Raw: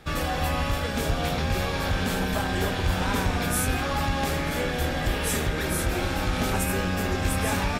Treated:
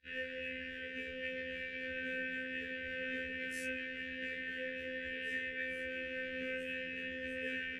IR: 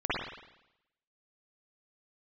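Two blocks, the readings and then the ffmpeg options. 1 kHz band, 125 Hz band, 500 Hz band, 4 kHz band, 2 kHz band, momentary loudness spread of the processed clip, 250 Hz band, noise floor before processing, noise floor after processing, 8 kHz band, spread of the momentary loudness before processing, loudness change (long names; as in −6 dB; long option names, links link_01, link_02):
below −40 dB, −33.5 dB, −13.5 dB, −15.5 dB, −7.5 dB, 3 LU, −18.0 dB, −28 dBFS, −45 dBFS, −29.0 dB, 2 LU, −13.5 dB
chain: -filter_complex "[0:a]afwtdn=0.0224,asplit=3[link_01][link_02][link_03];[link_01]bandpass=frequency=530:width_type=q:width=8,volume=0dB[link_04];[link_02]bandpass=frequency=1840:width_type=q:width=8,volume=-6dB[link_05];[link_03]bandpass=frequency=2480:width_type=q:width=8,volume=-9dB[link_06];[link_04][link_05][link_06]amix=inputs=3:normalize=0,equalizer=frequency=480:width=0.49:gain=-14,afftfilt=real='hypot(re,im)*cos(PI*b)':imag='0':win_size=2048:overlap=0.75,asuperstop=centerf=830:order=20:qfactor=0.94,afftfilt=real='re*1.73*eq(mod(b,3),0)':imag='im*1.73*eq(mod(b,3),0)':win_size=2048:overlap=0.75,volume=14.5dB"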